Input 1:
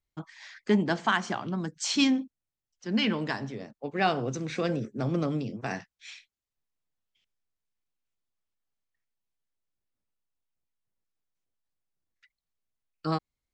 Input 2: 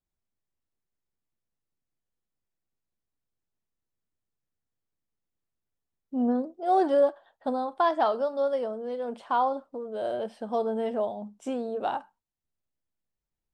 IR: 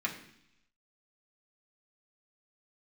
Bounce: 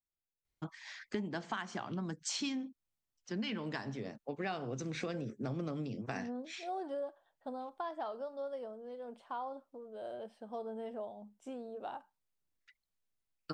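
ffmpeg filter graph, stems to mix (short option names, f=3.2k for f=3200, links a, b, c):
-filter_complex "[0:a]adelay=450,volume=-1.5dB[a];[1:a]volume=-13dB[b];[a][b]amix=inputs=2:normalize=0,acompressor=threshold=-36dB:ratio=5"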